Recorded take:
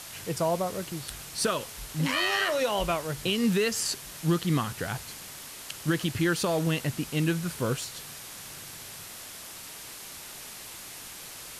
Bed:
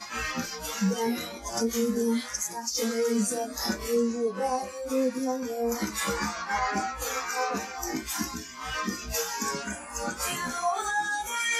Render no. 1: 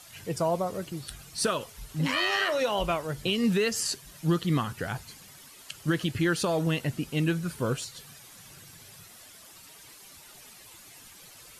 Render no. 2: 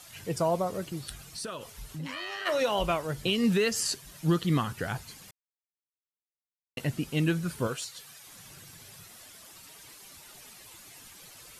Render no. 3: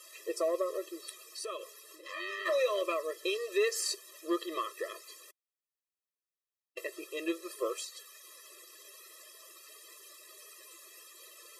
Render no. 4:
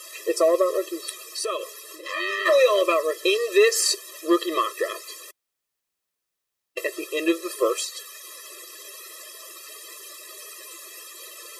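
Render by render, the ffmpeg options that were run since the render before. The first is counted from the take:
ffmpeg -i in.wav -af "afftdn=noise_reduction=11:noise_floor=-43" out.wav
ffmpeg -i in.wav -filter_complex "[0:a]asplit=3[link_01][link_02][link_03];[link_01]afade=type=out:start_time=1.18:duration=0.02[link_04];[link_02]acompressor=threshold=-37dB:ratio=3:attack=3.2:release=140:knee=1:detection=peak,afade=type=in:start_time=1.18:duration=0.02,afade=type=out:start_time=2.45:duration=0.02[link_05];[link_03]afade=type=in:start_time=2.45:duration=0.02[link_06];[link_04][link_05][link_06]amix=inputs=3:normalize=0,asettb=1/sr,asplit=3[link_07][link_08][link_09];[link_07]atrim=end=7.674[link_10];[link_08]atrim=start=7.67:end=8.27,asetpts=PTS-STARTPTS,afade=type=in:duration=0.004:curve=qsin,afade=type=out:start_time=0.596:duration=0.004:curve=qsin,lowshelf=frequency=380:gain=-12[link_11];[link_09]atrim=start=8.266[link_12];[link_10][link_11]acrossfade=duration=0.004:curve1=hsin:curve2=qsin[link_13];[link_13][link_12]acrossfade=duration=0.004:curve1=qsin:curve2=hsin,asplit=3[link_14][link_15][link_16];[link_14]atrim=end=5.31,asetpts=PTS-STARTPTS,afade=type=out:start_time=5.306:duration=0.004:curve=hsin[link_17];[link_15]atrim=start=5.31:end=6.77,asetpts=PTS-STARTPTS,volume=0[link_18];[link_16]atrim=start=6.77,asetpts=PTS-STARTPTS,afade=type=in:duration=0.004:curve=hsin[link_19];[link_17][link_18][link_19]concat=n=3:v=0:a=1" out.wav
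ffmpeg -i in.wav -af "asoftclip=type=tanh:threshold=-19dB,afftfilt=real='re*eq(mod(floor(b*sr/1024/340),2),1)':imag='im*eq(mod(floor(b*sr/1024/340),2),1)':win_size=1024:overlap=0.75" out.wav
ffmpeg -i in.wav -af "volume=12dB" out.wav

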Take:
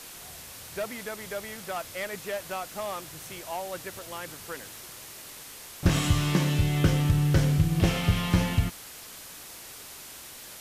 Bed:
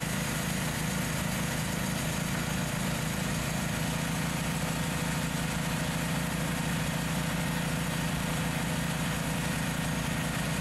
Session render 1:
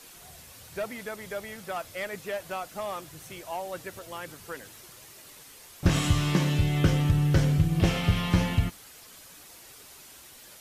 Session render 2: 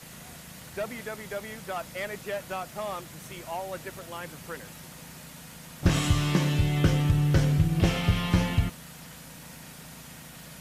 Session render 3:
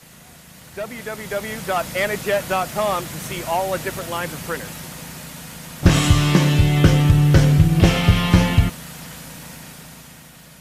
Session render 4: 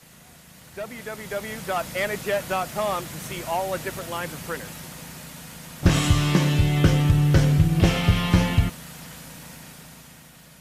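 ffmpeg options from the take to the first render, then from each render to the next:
ffmpeg -i in.wav -af "afftdn=noise_reduction=7:noise_floor=-45" out.wav
ffmpeg -i in.wav -i bed.wav -filter_complex "[1:a]volume=-16.5dB[link_01];[0:a][link_01]amix=inputs=2:normalize=0" out.wav
ffmpeg -i in.wav -af "dynaudnorm=framelen=230:gausssize=11:maxgain=13dB" out.wav
ffmpeg -i in.wav -af "volume=-4.5dB" out.wav

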